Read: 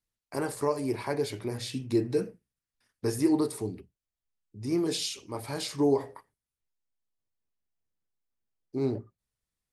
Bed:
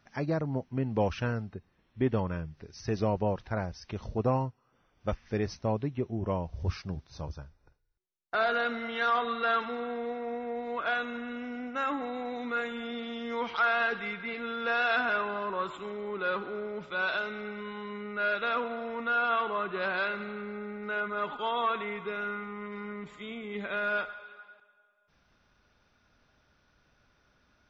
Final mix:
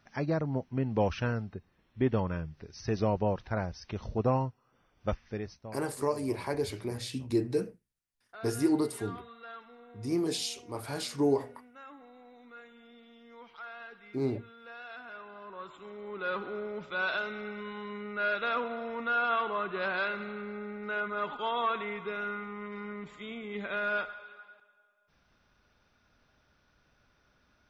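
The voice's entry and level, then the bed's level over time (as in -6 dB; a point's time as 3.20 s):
5.40 s, -2.0 dB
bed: 5.13 s 0 dB
5.85 s -18.5 dB
15.00 s -18.5 dB
16.44 s -1 dB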